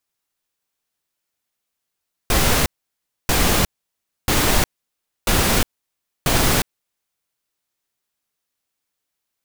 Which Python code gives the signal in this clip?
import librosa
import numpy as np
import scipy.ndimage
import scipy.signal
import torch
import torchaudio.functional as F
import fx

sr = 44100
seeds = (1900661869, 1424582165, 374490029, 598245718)

y = fx.noise_burst(sr, seeds[0], colour='pink', on_s=0.36, off_s=0.63, bursts=5, level_db=-16.5)